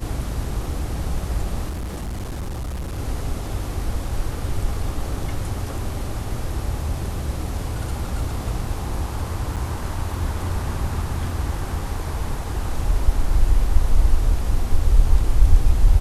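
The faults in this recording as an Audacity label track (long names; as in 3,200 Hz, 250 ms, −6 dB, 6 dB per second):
1.690000	2.990000	clipping −25 dBFS
9.560000	9.570000	drop-out 7.3 ms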